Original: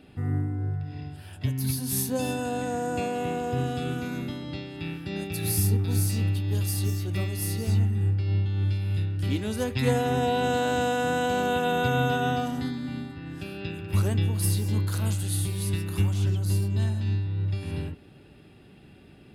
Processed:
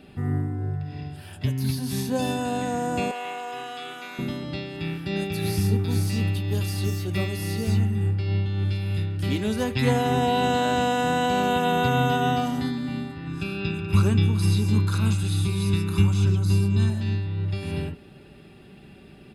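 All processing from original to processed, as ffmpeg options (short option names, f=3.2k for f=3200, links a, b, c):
-filter_complex "[0:a]asettb=1/sr,asplit=3[a][b][c];[a]atrim=end=3.114[d];[b]atrim=start=3.11:end=4.19,asetpts=PTS-STARTPTS,afade=t=in:d=0.004:c=qsin,afade=t=out:st=1.076:d=0.004:c=qsin,acrossover=split=4200[e][f];[f]acompressor=threshold=-55dB:ratio=4:attack=1:release=60[g];[e][g]amix=inputs=2:normalize=0,highpass=770[h];[c]atrim=start=4.186[i];[d][h]acrossfade=d=0.004:c1=hsin:c2=qsin[j];[j][i]acrossfade=d=0.004:c1=qsin:c2=hsin,asettb=1/sr,asplit=3[k][l][m];[k]atrim=end=13.274[n];[l]atrim=start=13.27:end=16.9,asetpts=PTS-STARTPTS,afade=t=in:d=0.004:c=qsin,afade=t=out:st=3.626:d=0.004:c=qsin,lowpass=10k,aecho=1:1:0.8:0.56,atrim=end_sample=160083[o];[m]atrim=start=16.896[p];[n][o]acrossfade=d=0.004:c1=hsin:c2=qsin[q];[q][p]acrossfade=d=0.004:c1=qsin:c2=hsin,acrossover=split=5300[r][s];[s]acompressor=threshold=-44dB:ratio=4:attack=1:release=60[t];[r][t]amix=inputs=2:normalize=0,aecho=1:1:5.1:0.31,volume=3.5dB"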